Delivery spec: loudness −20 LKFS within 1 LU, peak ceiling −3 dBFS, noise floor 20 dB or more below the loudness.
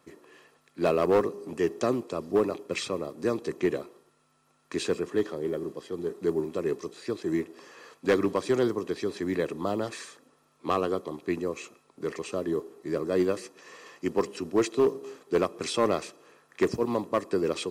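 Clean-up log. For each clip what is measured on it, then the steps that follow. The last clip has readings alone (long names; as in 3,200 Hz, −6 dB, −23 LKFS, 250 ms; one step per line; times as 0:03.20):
share of clipped samples 0.4%; peaks flattened at −16.0 dBFS; integrated loudness −29.5 LKFS; sample peak −16.0 dBFS; target loudness −20.0 LKFS
→ clipped peaks rebuilt −16 dBFS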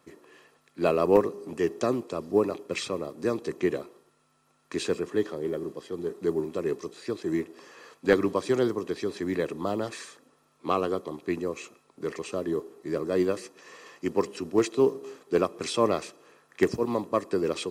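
share of clipped samples 0.0%; integrated loudness −28.5 LKFS; sample peak −7.0 dBFS; target loudness −20.0 LKFS
→ level +8.5 dB
brickwall limiter −3 dBFS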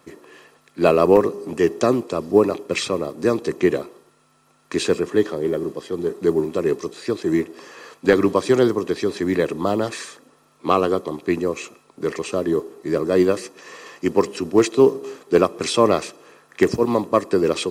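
integrated loudness −20.5 LKFS; sample peak −3.0 dBFS; background noise floor −58 dBFS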